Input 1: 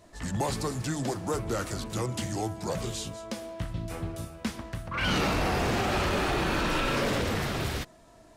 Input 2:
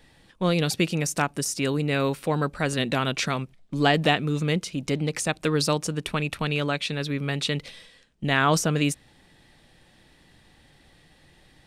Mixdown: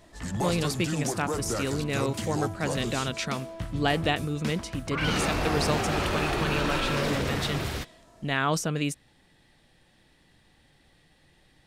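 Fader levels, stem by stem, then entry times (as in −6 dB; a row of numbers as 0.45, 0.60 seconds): −0.5, −5.0 decibels; 0.00, 0.00 seconds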